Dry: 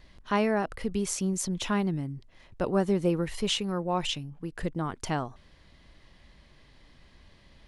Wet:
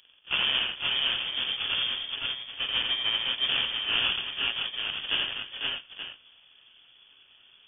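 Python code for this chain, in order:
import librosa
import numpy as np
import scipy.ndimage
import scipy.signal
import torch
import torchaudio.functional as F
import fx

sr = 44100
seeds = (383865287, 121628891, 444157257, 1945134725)

p1 = fx.pitch_bins(x, sr, semitones=-7.5)
p2 = scipy.signal.sosfilt(scipy.signal.butter(2, 180.0, 'highpass', fs=sr, output='sos'), p1)
p3 = fx.low_shelf(p2, sr, hz=230.0, db=-9.0)
p4 = fx.rider(p3, sr, range_db=10, speed_s=2.0)
p5 = p3 + (p4 * 10.0 ** (-2.0 / 20.0))
p6 = fx.sample_hold(p5, sr, seeds[0], rate_hz=1300.0, jitter_pct=20)
p7 = p6 + fx.echo_multitap(p6, sr, ms=(85, 299, 496, 515, 522, 878), db=(-4.0, -18.5, -9.0, -7.5, -4.0, -10.0), dry=0)
p8 = fx.freq_invert(p7, sr, carrier_hz=3400)
y = p8 * 10.0 ** (-2.0 / 20.0)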